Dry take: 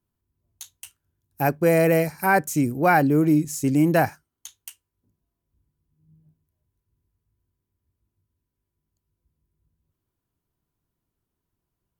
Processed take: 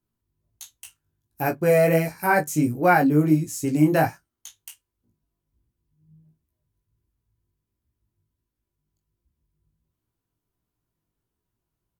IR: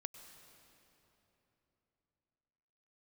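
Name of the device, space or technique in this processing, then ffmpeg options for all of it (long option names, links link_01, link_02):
double-tracked vocal: -filter_complex "[0:a]asplit=2[link_01][link_02];[link_02]adelay=26,volume=-12.5dB[link_03];[link_01][link_03]amix=inputs=2:normalize=0,flanger=delay=16.5:depth=3.5:speed=1.4,volume=2dB"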